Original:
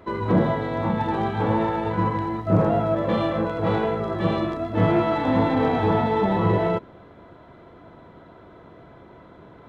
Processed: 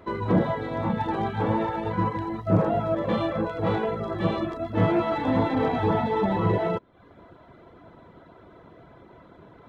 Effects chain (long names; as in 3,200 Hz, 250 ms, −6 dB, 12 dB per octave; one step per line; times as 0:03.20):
reverb reduction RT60 0.57 s
level −1.5 dB